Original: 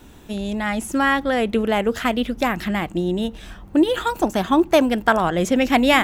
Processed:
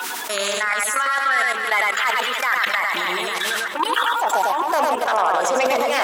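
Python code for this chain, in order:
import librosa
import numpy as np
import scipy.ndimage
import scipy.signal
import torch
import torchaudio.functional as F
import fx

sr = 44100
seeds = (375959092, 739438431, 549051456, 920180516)

p1 = fx.spec_quant(x, sr, step_db=30)
p2 = fx.fold_sine(p1, sr, drive_db=11, ceiling_db=-2.0)
p3 = p1 + F.gain(torch.from_numpy(p2), -5.0).numpy()
p4 = fx.filter_sweep_highpass(p3, sr, from_hz=1300.0, to_hz=630.0, start_s=2.95, end_s=6.02, q=2.2)
p5 = p4 + fx.echo_feedback(p4, sr, ms=269, feedback_pct=43, wet_db=-10.5, dry=0)
p6 = fx.level_steps(p5, sr, step_db=16)
p7 = p6 * (1.0 - 0.73 / 2.0 + 0.73 / 2.0 * np.cos(2.0 * np.pi * 2.3 * (np.arange(len(p6)) / sr)))
p8 = p7 + 10.0 ** (-3.5 / 20.0) * np.pad(p7, (int(100 * sr / 1000.0), 0))[:len(p7)]
p9 = fx.env_flatten(p8, sr, amount_pct=70)
y = F.gain(torch.from_numpy(p9), -3.0).numpy()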